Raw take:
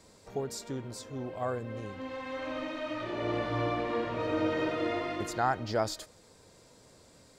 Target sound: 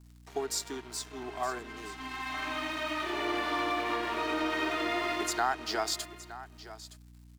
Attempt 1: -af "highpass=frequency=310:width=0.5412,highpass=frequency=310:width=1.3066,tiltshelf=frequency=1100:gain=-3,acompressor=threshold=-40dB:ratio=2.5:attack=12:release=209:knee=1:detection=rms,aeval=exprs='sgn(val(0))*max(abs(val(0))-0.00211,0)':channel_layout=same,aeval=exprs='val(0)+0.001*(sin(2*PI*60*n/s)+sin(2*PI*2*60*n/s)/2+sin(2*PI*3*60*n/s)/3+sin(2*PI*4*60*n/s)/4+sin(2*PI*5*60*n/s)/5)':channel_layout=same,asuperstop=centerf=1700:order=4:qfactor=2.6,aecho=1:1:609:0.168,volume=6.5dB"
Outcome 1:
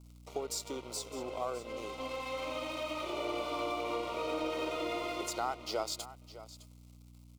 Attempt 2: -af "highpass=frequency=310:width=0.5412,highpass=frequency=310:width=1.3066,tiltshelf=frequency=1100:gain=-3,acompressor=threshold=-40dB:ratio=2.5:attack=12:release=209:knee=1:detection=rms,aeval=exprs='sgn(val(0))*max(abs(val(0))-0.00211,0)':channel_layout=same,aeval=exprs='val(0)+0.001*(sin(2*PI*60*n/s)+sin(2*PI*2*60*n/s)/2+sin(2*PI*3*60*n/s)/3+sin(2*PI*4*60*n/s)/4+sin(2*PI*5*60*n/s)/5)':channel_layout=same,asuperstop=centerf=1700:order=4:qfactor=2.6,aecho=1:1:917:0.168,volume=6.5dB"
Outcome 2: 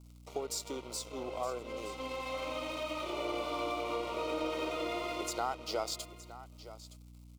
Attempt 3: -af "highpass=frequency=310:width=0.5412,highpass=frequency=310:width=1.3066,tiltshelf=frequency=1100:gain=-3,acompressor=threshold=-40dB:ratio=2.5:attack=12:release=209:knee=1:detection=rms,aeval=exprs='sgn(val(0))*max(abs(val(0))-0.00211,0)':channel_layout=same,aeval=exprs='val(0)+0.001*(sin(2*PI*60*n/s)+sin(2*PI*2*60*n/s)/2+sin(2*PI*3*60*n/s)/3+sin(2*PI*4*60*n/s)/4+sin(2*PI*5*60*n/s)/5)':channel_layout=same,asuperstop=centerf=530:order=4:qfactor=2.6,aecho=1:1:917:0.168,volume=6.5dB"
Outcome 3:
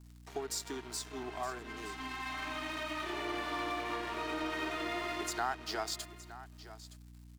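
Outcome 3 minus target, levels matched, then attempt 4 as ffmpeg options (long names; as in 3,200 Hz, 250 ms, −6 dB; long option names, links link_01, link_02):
downward compressor: peak gain reduction +5 dB
-af "highpass=frequency=310:width=0.5412,highpass=frequency=310:width=1.3066,tiltshelf=frequency=1100:gain=-3,acompressor=threshold=-31.5dB:ratio=2.5:attack=12:release=209:knee=1:detection=rms,aeval=exprs='sgn(val(0))*max(abs(val(0))-0.00211,0)':channel_layout=same,aeval=exprs='val(0)+0.001*(sin(2*PI*60*n/s)+sin(2*PI*2*60*n/s)/2+sin(2*PI*3*60*n/s)/3+sin(2*PI*4*60*n/s)/4+sin(2*PI*5*60*n/s)/5)':channel_layout=same,asuperstop=centerf=530:order=4:qfactor=2.6,aecho=1:1:917:0.168,volume=6.5dB"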